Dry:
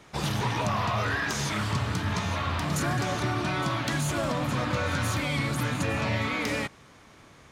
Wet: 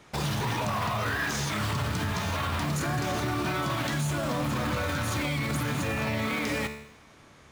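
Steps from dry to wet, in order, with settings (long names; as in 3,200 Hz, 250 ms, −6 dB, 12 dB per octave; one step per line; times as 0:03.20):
in parallel at −0.5 dB: bit-depth reduction 6 bits, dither none
on the sum: tuned comb filter 73 Hz, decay 0.7 s, harmonics all, mix 60%
brickwall limiter −26 dBFS, peak gain reduction 10 dB
level +5 dB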